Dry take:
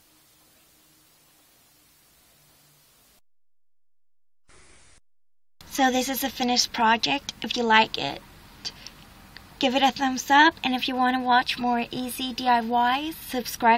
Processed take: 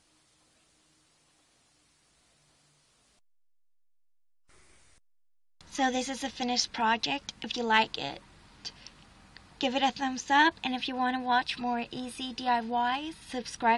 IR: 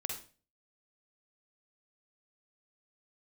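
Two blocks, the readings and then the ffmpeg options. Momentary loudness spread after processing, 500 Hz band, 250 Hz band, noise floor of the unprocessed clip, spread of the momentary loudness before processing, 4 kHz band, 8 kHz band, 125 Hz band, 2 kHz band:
13 LU, -6.5 dB, -6.5 dB, -59 dBFS, 12 LU, -6.5 dB, -7.0 dB, -7.0 dB, -6.5 dB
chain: -af "aeval=exprs='0.708*(cos(1*acos(clip(val(0)/0.708,-1,1)))-cos(1*PI/2))+0.0112*(cos(7*acos(clip(val(0)/0.708,-1,1)))-cos(7*PI/2))':c=same,aresample=22050,aresample=44100,volume=0.501"

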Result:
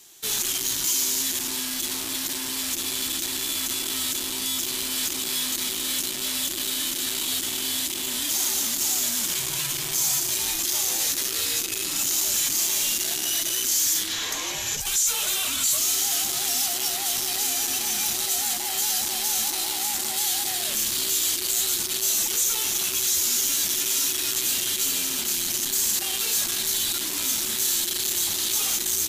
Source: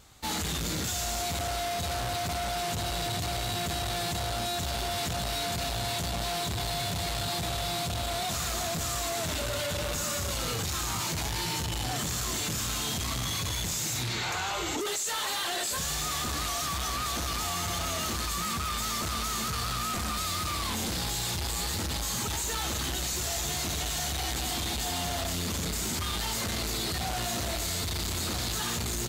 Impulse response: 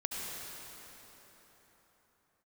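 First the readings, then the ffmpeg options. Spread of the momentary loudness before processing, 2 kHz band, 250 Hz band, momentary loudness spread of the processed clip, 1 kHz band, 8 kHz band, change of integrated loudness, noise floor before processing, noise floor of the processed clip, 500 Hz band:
1 LU, +2.0 dB, -1.5 dB, 5 LU, -5.5 dB, +10.5 dB, +7.5 dB, -32 dBFS, -30 dBFS, -5.0 dB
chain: -af "crystalizer=i=9:c=0,afreqshift=-440,aeval=exprs='0.75*(cos(1*acos(clip(val(0)/0.75,-1,1)))-cos(1*PI/2))+0.0237*(cos(3*acos(clip(val(0)/0.75,-1,1)))-cos(3*PI/2))':c=same,volume=0.376"

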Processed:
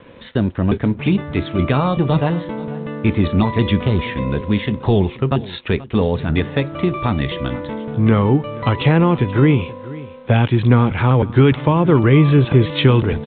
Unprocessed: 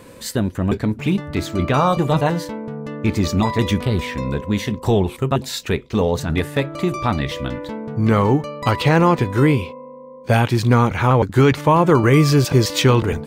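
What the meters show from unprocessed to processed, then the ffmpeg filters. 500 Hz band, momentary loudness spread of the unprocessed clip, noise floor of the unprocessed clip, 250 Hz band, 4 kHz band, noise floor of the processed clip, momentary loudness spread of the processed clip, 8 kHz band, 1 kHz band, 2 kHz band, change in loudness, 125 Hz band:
0.0 dB, 10 LU, -40 dBFS, +2.5 dB, -1.0 dB, -38 dBFS, 9 LU, under -40 dB, -3.0 dB, -0.5 dB, +1.5 dB, +3.0 dB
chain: -filter_complex "[0:a]acrossover=split=380|3000[s0][s1][s2];[s1]acompressor=threshold=0.0447:ratio=2[s3];[s0][s3][s2]amix=inputs=3:normalize=0,aresample=8000,aeval=exprs='sgn(val(0))*max(abs(val(0))-0.00335,0)':c=same,aresample=44100,aecho=1:1:482:0.119,volume=1.41"

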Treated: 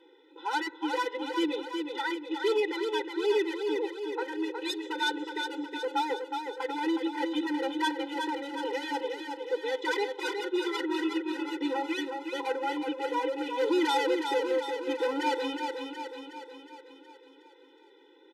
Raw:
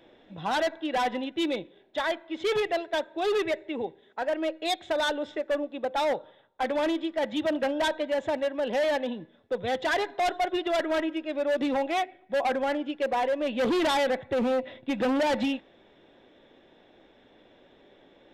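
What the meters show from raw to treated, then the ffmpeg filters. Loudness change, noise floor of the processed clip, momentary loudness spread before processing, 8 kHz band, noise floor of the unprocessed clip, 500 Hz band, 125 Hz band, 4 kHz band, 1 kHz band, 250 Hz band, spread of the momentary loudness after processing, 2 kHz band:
-2.5 dB, -58 dBFS, 7 LU, -2.0 dB, -59 dBFS, -3.5 dB, under -20 dB, -1.0 dB, -2.5 dB, -1.0 dB, 7 LU, -1.5 dB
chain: -af "aecho=1:1:366|732|1098|1464|1830|2196|2562:0.531|0.297|0.166|0.0932|0.0522|0.0292|0.0164,afftfilt=real='re*eq(mod(floor(b*sr/1024/260),2),1)':imag='im*eq(mod(floor(b*sr/1024/260),2),1)':win_size=1024:overlap=0.75"

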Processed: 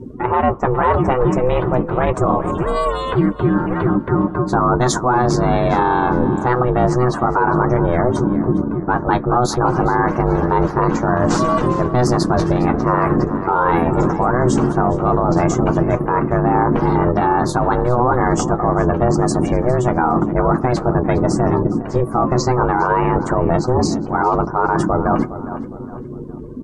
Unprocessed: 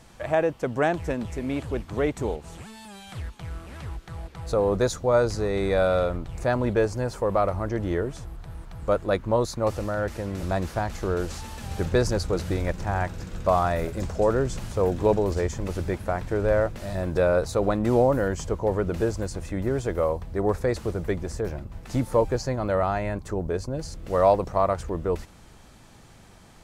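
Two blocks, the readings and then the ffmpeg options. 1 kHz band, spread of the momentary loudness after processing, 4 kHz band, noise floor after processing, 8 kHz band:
+13.5 dB, 3 LU, +7.0 dB, -29 dBFS, +9.0 dB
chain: -filter_complex "[0:a]afftdn=nr=33:nf=-44,equalizer=f=500:t=o:w=1:g=-8,equalizer=f=1000:t=o:w=1:g=7,equalizer=f=2000:t=o:w=1:g=-7,equalizer=f=4000:t=o:w=1:g=-5,equalizer=f=8000:t=o:w=1:g=-4,flanger=delay=7.6:depth=1.7:regen=45:speed=0.51:shape=triangular,areverse,acompressor=threshold=0.0141:ratio=12,areverse,aeval=exprs='val(0)*sin(2*PI*250*n/s)':c=same,aeval=exprs='val(0)+0.0002*(sin(2*PI*50*n/s)+sin(2*PI*2*50*n/s)/2+sin(2*PI*3*50*n/s)/3+sin(2*PI*4*50*n/s)/4+sin(2*PI*5*50*n/s)/5)':c=same,adynamicequalizer=threshold=0.00158:dfrequency=960:dqfactor=1.4:tfrequency=960:tqfactor=1.4:attack=5:release=100:ratio=0.375:range=2.5:mode=boostabove:tftype=bell,asplit=2[s0][s1];[s1]adelay=410,lowpass=f=4900:p=1,volume=0.15,asplit=2[s2][s3];[s3]adelay=410,lowpass=f=4900:p=1,volume=0.39,asplit=2[s4][s5];[s5]adelay=410,lowpass=f=4900:p=1,volume=0.39[s6];[s2][s4][s6]amix=inputs=3:normalize=0[s7];[s0][s7]amix=inputs=2:normalize=0,alimiter=level_in=50.1:limit=0.891:release=50:level=0:latency=1,volume=0.596"

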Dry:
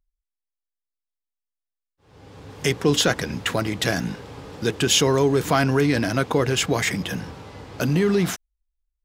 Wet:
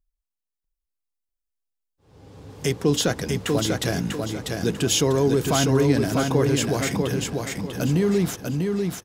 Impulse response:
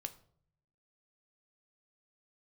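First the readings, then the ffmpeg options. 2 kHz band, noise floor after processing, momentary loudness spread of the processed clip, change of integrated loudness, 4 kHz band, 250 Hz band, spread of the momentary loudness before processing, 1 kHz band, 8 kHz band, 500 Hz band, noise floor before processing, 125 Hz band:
-5.0 dB, -85 dBFS, 8 LU, -1.0 dB, -3.5 dB, +1.0 dB, 14 LU, -3.0 dB, -0.5 dB, 0.0 dB, under -85 dBFS, +1.5 dB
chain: -filter_complex "[0:a]equalizer=f=1900:w=0.47:g=-7,asplit=2[s0][s1];[s1]aecho=0:1:644|1288|1932|2576:0.631|0.202|0.0646|0.0207[s2];[s0][s2]amix=inputs=2:normalize=0"

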